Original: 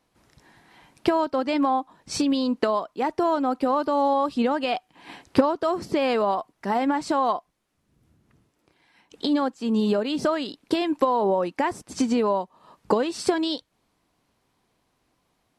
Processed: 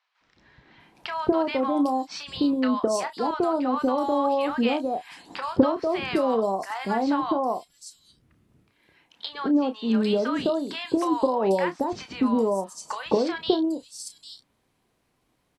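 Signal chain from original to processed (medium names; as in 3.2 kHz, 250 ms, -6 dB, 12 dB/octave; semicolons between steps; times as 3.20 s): doubling 31 ms -10.5 dB; three bands offset in time mids, lows, highs 210/800 ms, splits 940/5100 Hz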